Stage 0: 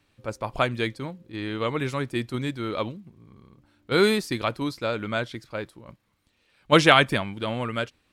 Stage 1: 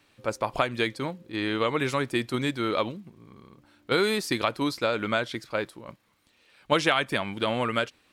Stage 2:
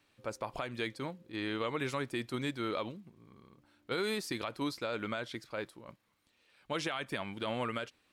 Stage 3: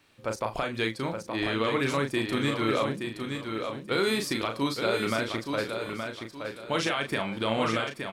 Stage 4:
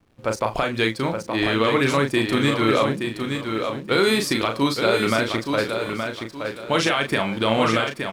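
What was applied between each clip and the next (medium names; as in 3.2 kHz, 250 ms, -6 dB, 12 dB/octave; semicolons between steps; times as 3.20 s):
bass shelf 160 Hz -11.5 dB; compression 4:1, threshold -27 dBFS, peak gain reduction 13.5 dB; trim +5.5 dB
peak limiter -16.5 dBFS, peak gain reduction 9 dB; trim -8 dB
doubling 36 ms -5.5 dB; on a send: feedback delay 871 ms, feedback 31%, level -6 dB; on the sum: trim +7 dB
hysteresis with a dead band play -52.5 dBFS; trim +7.5 dB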